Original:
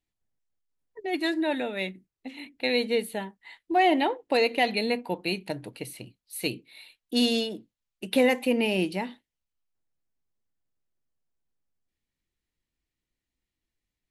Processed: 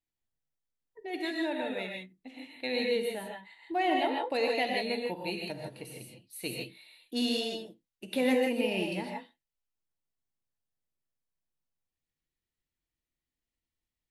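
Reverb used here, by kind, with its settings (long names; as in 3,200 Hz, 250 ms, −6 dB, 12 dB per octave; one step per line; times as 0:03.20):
reverb whose tail is shaped and stops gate 180 ms rising, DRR 0 dB
level −8 dB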